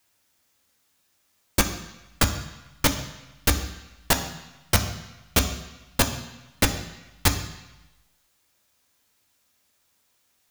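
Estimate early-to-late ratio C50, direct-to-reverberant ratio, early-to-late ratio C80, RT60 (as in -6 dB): 10.0 dB, 5.0 dB, 11.5 dB, 1.0 s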